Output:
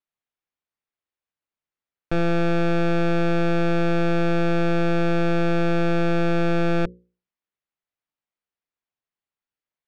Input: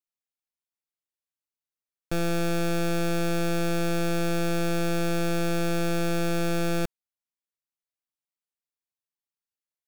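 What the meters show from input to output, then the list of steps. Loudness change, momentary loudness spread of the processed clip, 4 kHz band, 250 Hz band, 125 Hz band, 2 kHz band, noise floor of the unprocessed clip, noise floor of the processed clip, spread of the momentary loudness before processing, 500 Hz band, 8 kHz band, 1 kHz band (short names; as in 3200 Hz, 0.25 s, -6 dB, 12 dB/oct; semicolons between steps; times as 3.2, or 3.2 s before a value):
+5.0 dB, 1 LU, -1.0 dB, +5.0 dB, +5.0 dB, +4.5 dB, under -85 dBFS, under -85 dBFS, 1 LU, +5.5 dB, under -10 dB, +5.5 dB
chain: LPF 2800 Hz 12 dB/oct; notches 60/120/180/240/300/360/420/480/540 Hz; gain +5.5 dB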